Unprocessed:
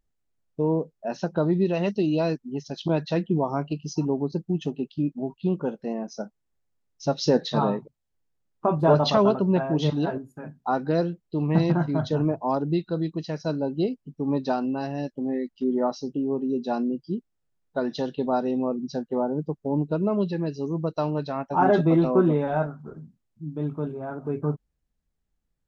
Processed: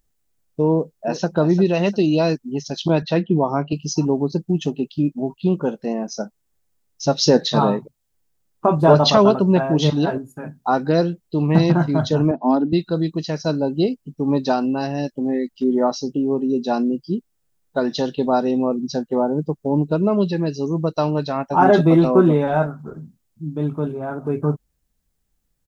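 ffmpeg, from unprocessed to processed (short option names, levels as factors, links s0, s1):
-filter_complex "[0:a]asplit=2[s0][s1];[s1]afade=t=in:st=0.72:d=0.01,afade=t=out:st=1.3:d=0.01,aecho=0:1:350|700|1050:0.281838|0.0704596|0.0176149[s2];[s0][s2]amix=inputs=2:normalize=0,asettb=1/sr,asplit=3[s3][s4][s5];[s3]atrim=end=3.024[s6];[s4]atrim=start=3.02:end=3.73,asetpts=PTS-STARTPTS,afade=t=in:d=0.004:c=qsin,afade=t=out:st=0.706:d=0.004:c=qsin,highpass=100,lowpass=3900[s7];[s5]atrim=start=3.726[s8];[s6][s7]acrossfade=d=0.004:c1=hsin:c2=qsin[s9];[s9][s8]acrossfade=d=0.004:c1=qsin:c2=hsin,asettb=1/sr,asplit=3[s10][s11][s12];[s10]atrim=end=12.314[s13];[s11]atrim=start=12.31:end=12.73,asetpts=PTS-STARTPTS,afade=t=in:d=0.004:c=qsin,afade=t=out:st=0.416:d=0.004:c=qsin,highpass=f=200:w=0.5412,highpass=f=200:w=1.3066,equalizer=f=250:t=q:w=4:g=10,equalizer=f=480:t=q:w=4:g=-7,equalizer=f=1100:t=q:w=4:g=-5,equalizer=f=2300:t=q:w=4:g=-7,lowpass=f=4000:w=0.5412,lowpass=f=4000:w=1.3066[s14];[s12]atrim=start=12.726[s15];[s13][s14]acrossfade=d=0.004:c1=hsin:c2=qsin[s16];[s16][s15]acrossfade=d=0.004:c1=qsin:c2=hsin,highshelf=f=5600:g=11,volume=2"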